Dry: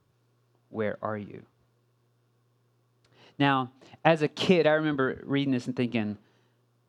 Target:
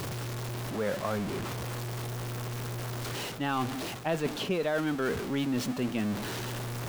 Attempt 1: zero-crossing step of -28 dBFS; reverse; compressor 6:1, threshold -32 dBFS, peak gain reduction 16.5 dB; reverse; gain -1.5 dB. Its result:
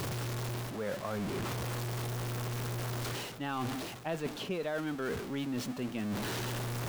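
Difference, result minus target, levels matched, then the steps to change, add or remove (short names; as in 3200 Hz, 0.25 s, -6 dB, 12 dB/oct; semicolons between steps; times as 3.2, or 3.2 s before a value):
compressor: peak gain reduction +6 dB
change: compressor 6:1, threshold -25 dBFS, peak gain reduction 11 dB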